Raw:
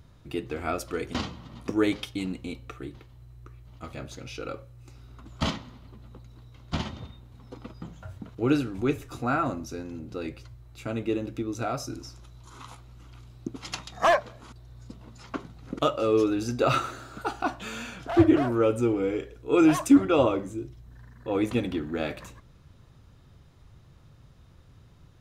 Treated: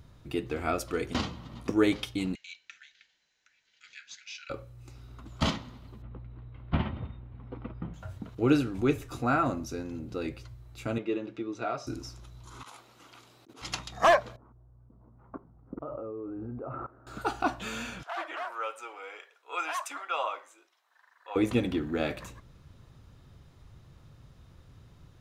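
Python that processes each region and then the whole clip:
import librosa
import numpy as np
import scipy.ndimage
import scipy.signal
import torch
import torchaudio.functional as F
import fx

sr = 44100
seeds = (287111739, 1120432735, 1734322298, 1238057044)

y = fx.chain(x, sr, fx.steep_highpass(hz=1500.0, slope=96),
    fx.resample_bad(factor=3, down='none', up='filtered'), at=(2.35, 4.5))
y = fx.chain(y, sr, fx.lowpass(hz=2700.0, slope=24),
    fx.low_shelf(hz=180.0, db=4.5), at=(6.02, 7.94))
y = fx.chain(y, sr, fx.bandpass_edges(low_hz=180.0, high_hz=3800.0),
    fx.low_shelf(hz=350.0, db=-5.0),
    fx.notch_comb(f0_hz=260.0), at=(10.98, 11.87))
y = fx.chain(y, sr, fx.highpass(hz=380.0, slope=12),
    fx.over_compress(threshold_db=-51.0, ratio=-1.0), at=(12.63, 13.62))
y = fx.chain(y, sr, fx.lowpass(hz=1200.0, slope=24),
    fx.level_steps(step_db=19), at=(14.36, 17.07))
y = fx.chain(y, sr, fx.highpass(hz=830.0, slope=24),
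    fx.high_shelf(hz=3700.0, db=-8.5), at=(18.03, 21.36))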